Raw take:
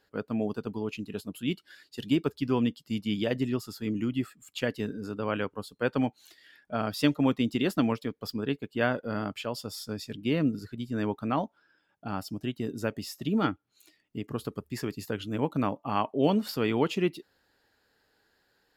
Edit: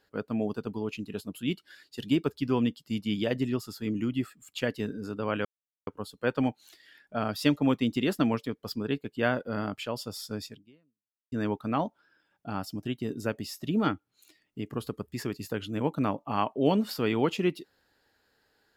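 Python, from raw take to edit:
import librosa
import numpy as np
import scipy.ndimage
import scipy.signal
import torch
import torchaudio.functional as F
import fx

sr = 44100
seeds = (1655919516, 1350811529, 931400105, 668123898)

y = fx.edit(x, sr, fx.insert_silence(at_s=5.45, length_s=0.42),
    fx.fade_out_span(start_s=10.04, length_s=0.86, curve='exp'), tone=tone)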